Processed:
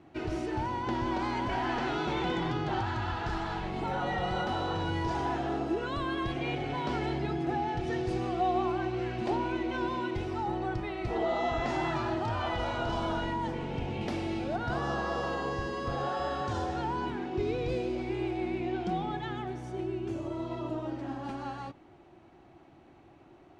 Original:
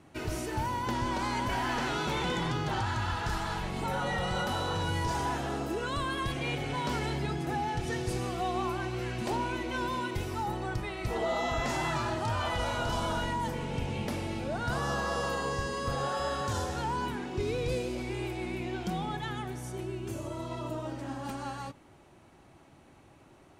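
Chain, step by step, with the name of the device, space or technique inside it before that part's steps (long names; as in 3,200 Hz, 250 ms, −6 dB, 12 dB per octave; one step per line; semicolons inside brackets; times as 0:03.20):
0:14.01–0:14.56: high-shelf EQ 3,600 Hz +7.5 dB
inside a cardboard box (low-pass filter 4,200 Hz 12 dB per octave; hollow resonant body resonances 340/720 Hz, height 8 dB, ringing for 35 ms)
level −2 dB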